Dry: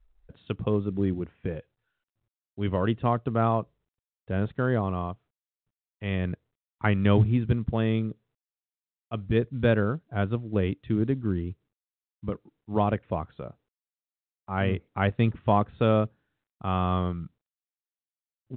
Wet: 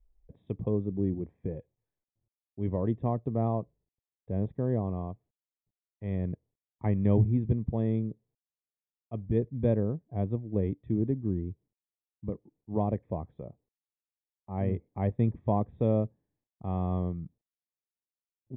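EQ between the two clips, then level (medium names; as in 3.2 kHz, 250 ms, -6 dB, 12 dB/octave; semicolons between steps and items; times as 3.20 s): boxcar filter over 31 samples; -2.5 dB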